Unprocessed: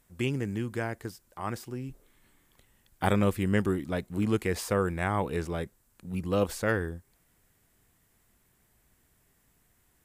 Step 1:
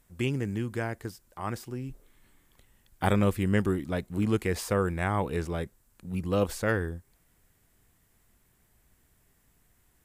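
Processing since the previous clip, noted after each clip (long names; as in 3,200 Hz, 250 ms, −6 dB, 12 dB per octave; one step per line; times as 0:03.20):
low-shelf EQ 73 Hz +5.5 dB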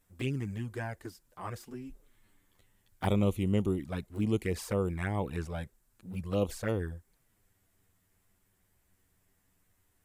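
flanger swept by the level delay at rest 11 ms, full sweep at −22.5 dBFS
level −2.5 dB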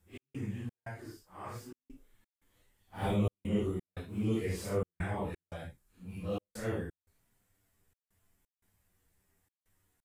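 random phases in long frames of 200 ms
gate pattern "x.xx.xxxx" 87 BPM −60 dB
level −2.5 dB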